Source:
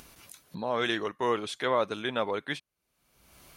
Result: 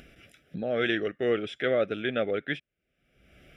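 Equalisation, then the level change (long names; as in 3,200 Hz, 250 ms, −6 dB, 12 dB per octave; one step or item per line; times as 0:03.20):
Savitzky-Golay smoothing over 25 samples
Butterworth band-reject 980 Hz, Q 1.3
+3.5 dB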